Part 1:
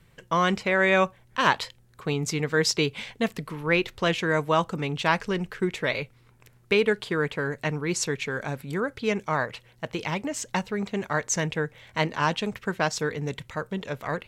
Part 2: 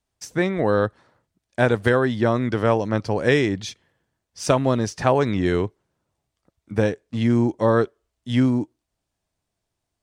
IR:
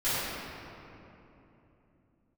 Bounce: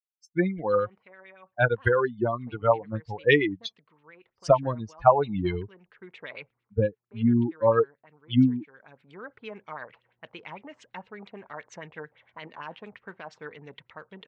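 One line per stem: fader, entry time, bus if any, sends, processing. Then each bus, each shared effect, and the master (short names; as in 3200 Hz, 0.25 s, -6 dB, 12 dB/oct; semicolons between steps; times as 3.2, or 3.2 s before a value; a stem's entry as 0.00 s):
-13.0 dB, 0.40 s, no send, HPF 240 Hz 6 dB/oct; limiter -16.5 dBFS, peak gain reduction 11 dB; auto duck -14 dB, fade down 0.30 s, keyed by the second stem
+1.5 dB, 0.00 s, no send, per-bin expansion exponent 3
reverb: off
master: LFO low-pass sine 8.8 Hz 790–3400 Hz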